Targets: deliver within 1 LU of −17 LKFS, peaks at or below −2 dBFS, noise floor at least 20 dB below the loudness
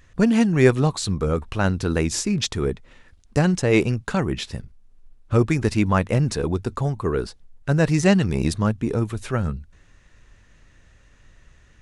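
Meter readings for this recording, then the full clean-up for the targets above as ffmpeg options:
integrated loudness −22.0 LKFS; sample peak −2.0 dBFS; target loudness −17.0 LKFS
→ -af "volume=5dB,alimiter=limit=-2dB:level=0:latency=1"

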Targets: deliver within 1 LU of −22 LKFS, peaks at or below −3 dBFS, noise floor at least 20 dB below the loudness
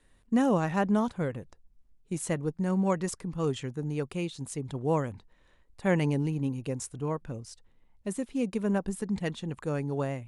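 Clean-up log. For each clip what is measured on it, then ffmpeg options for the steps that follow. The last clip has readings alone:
integrated loudness −31.0 LKFS; sample peak −14.0 dBFS; target loudness −22.0 LKFS
→ -af "volume=9dB"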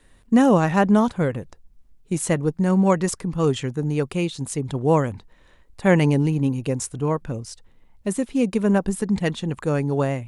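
integrated loudness −22.0 LKFS; sample peak −5.0 dBFS; background noise floor −55 dBFS

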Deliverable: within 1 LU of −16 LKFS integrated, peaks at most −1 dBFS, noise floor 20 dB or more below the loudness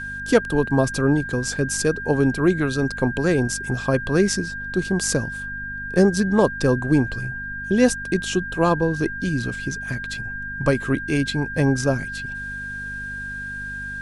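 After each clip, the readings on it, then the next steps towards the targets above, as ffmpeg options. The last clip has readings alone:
mains hum 50 Hz; hum harmonics up to 250 Hz; level of the hum −36 dBFS; interfering tone 1,600 Hz; level of the tone −29 dBFS; integrated loudness −22.5 LKFS; sample peak −2.5 dBFS; target loudness −16.0 LKFS
→ -af "bandreject=frequency=50:width_type=h:width=4,bandreject=frequency=100:width_type=h:width=4,bandreject=frequency=150:width_type=h:width=4,bandreject=frequency=200:width_type=h:width=4,bandreject=frequency=250:width_type=h:width=4"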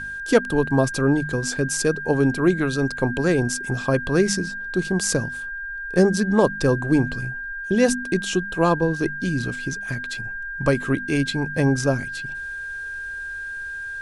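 mains hum none found; interfering tone 1,600 Hz; level of the tone −29 dBFS
→ -af "bandreject=frequency=1600:width=30"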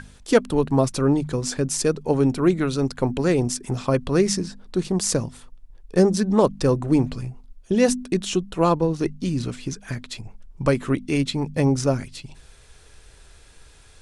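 interfering tone none found; integrated loudness −22.5 LKFS; sample peak −3.5 dBFS; target loudness −16.0 LKFS
→ -af "volume=6.5dB,alimiter=limit=-1dB:level=0:latency=1"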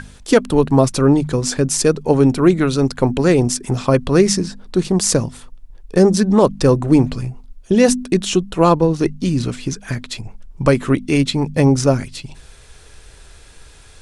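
integrated loudness −16.0 LKFS; sample peak −1.0 dBFS; background noise floor −43 dBFS

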